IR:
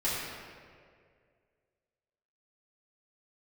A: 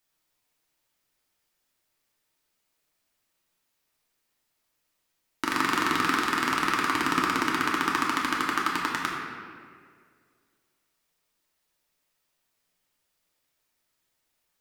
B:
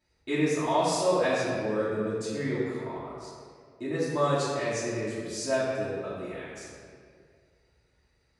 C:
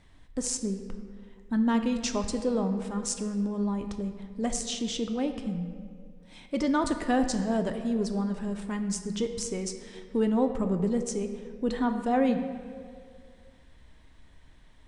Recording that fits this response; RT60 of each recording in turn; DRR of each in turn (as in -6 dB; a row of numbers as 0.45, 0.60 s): B; 2.1, 2.1, 2.1 s; -4.0, -11.5, 6.0 dB